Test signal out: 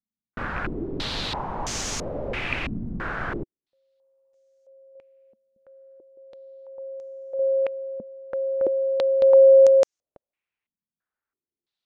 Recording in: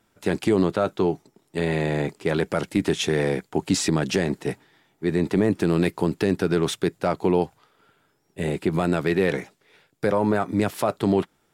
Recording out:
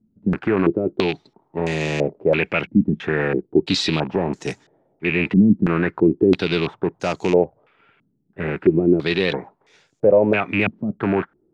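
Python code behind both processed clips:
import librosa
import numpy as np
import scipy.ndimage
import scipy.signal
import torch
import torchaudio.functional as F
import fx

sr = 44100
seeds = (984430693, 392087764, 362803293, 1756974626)

y = fx.rattle_buzz(x, sr, strikes_db=-28.0, level_db=-19.0)
y = fx.filter_held_lowpass(y, sr, hz=3.0, low_hz=220.0, high_hz=6400.0)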